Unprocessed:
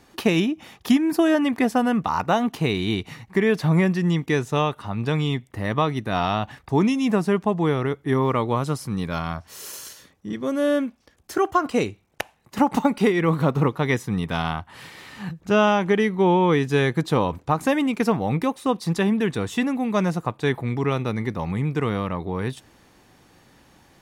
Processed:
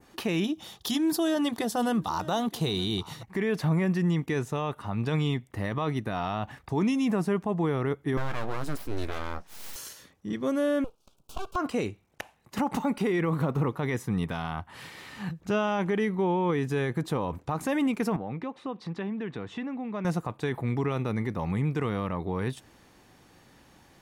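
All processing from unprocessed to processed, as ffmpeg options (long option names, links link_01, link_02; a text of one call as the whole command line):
ffmpeg -i in.wav -filter_complex "[0:a]asettb=1/sr,asplit=3[link_01][link_02][link_03];[link_01]atrim=end=0.444[link_04];[link_02]atrim=start=0.44:end=3.23,asetpts=PTS-STARTPTS,afade=type=in:duration=0.004:curve=qsin,afade=type=out:start_time=2.786:duration=0.004:curve=qsin,highshelf=frequency=2900:width_type=q:width=3:gain=6.5,bandreject=frequency=260:width=5.8,aecho=1:1:922:0.0794,atrim=end_sample=123039[link_05];[link_03]atrim=start=3.226[link_06];[link_04][link_05]acrossfade=duration=0.004:curve1=hsin:curve2=qsin[link_07];[link_07][link_06]acrossfade=duration=0.004:curve1=qsin:curve2=hsin,asettb=1/sr,asplit=3[link_08][link_09][link_10];[link_08]atrim=end=8.174[link_11];[link_09]atrim=start=8.17:end=9.76,asetpts=PTS-STARTPTS,afade=type=in:duration=0.004:curve=qsin,afade=type=out:start_time=1.586:duration=0.004:curve=qsin,aeval=exprs='abs(val(0))':channel_layout=same,asplit=2[link_12][link_13];[link_13]adelay=14,volume=-12dB[link_14];[link_12][link_14]amix=inputs=2:normalize=0,atrim=end_sample=70119[link_15];[link_10]atrim=start=9.756[link_16];[link_11][link_15]acrossfade=duration=0.004:curve1=hsin:curve2=qsin[link_17];[link_17][link_16]acrossfade=duration=0.004:curve1=qsin:curve2=hsin,asettb=1/sr,asplit=3[link_18][link_19][link_20];[link_18]atrim=end=10.844[link_21];[link_19]atrim=start=10.84:end=11.56,asetpts=PTS-STARTPTS,afade=type=in:duration=0.004:curve=qsin,afade=type=out:start_time=0.716:duration=0.004:curve=qsin,acrossover=split=950|4300[link_22][link_23][link_24];[link_22]acompressor=threshold=-31dB:ratio=4[link_25];[link_23]acompressor=threshold=-32dB:ratio=4[link_26];[link_24]acompressor=threshold=-49dB:ratio=4[link_27];[link_25][link_26][link_27]amix=inputs=3:normalize=0,aeval=exprs='abs(val(0))':channel_layout=same,asuperstop=centerf=1900:order=4:qfactor=1.4[link_28];[link_20]atrim=start=11.556[link_29];[link_21][link_28]acrossfade=duration=0.004:curve1=hsin:curve2=qsin[link_30];[link_30][link_29]acrossfade=duration=0.004:curve1=qsin:curve2=hsin,asettb=1/sr,asplit=3[link_31][link_32][link_33];[link_31]atrim=end=18.164[link_34];[link_32]atrim=start=18.16:end=20.05,asetpts=PTS-STARTPTS,afade=type=in:duration=0.004:curve=qsin,afade=type=out:start_time=1.886:duration=0.004:curve=qsin,acompressor=threshold=-32dB:ratio=2.5:attack=3.2:release=140:knee=1:detection=peak,highpass=100,lowpass=2800[link_35];[link_33]atrim=start=20.046[link_36];[link_34][link_35]acrossfade=duration=0.004:curve1=hsin:curve2=qsin[link_37];[link_37][link_36]acrossfade=duration=0.004:curve1=qsin:curve2=hsin,adynamicequalizer=threshold=0.00631:dfrequency=4200:dqfactor=0.87:tfrequency=4200:tqfactor=0.87:attack=5:release=100:ratio=0.375:range=3:mode=cutabove:tftype=bell,alimiter=limit=-16.5dB:level=0:latency=1:release=29,volume=-2.5dB" out.wav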